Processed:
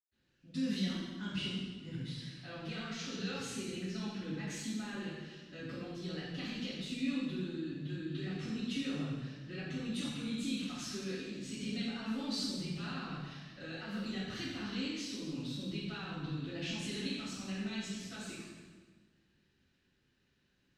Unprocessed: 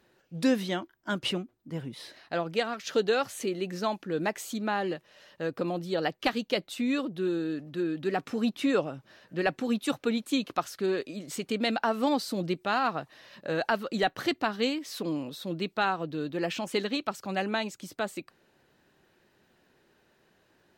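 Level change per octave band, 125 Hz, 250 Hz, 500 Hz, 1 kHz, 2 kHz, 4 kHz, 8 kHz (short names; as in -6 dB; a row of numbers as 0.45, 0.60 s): -1.5, -6.5, -16.5, -19.0, -10.5, -5.5, -4.0 dB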